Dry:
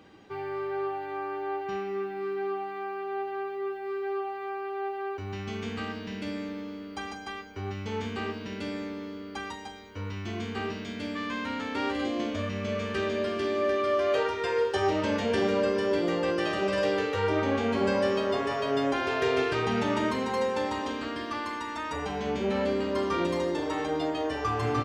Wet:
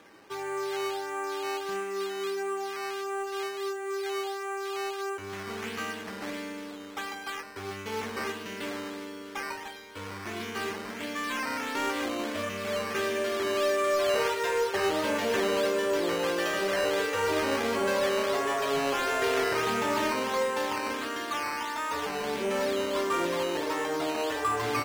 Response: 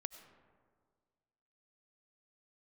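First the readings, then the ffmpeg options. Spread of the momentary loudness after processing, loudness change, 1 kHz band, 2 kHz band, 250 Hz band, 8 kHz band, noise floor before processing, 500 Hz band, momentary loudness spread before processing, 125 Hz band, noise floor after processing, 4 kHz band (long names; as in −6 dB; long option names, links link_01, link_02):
10 LU, 0.0 dB, +1.0 dB, +2.5 dB, −4.0 dB, +10.0 dB, −40 dBFS, −0.5 dB, 10 LU, −9.0 dB, −41 dBFS, +3.0 dB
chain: -filter_complex "[0:a]lowshelf=frequency=130:gain=-7,bandreject=frequency=760:width=12,asplit=2[link_01][link_02];[1:a]atrim=start_sample=2205,adelay=110[link_03];[link_02][link_03]afir=irnorm=-1:irlink=0,volume=-9.5dB[link_04];[link_01][link_04]amix=inputs=2:normalize=0,acrusher=samples=9:mix=1:aa=0.000001:lfo=1:lforange=9:lforate=1.5,asplit=2[link_05][link_06];[link_06]highpass=frequency=720:poles=1,volume=11dB,asoftclip=type=tanh:threshold=-15dB[link_07];[link_05][link_07]amix=inputs=2:normalize=0,lowpass=frequency=4200:poles=1,volume=-6dB,volume=-1.5dB"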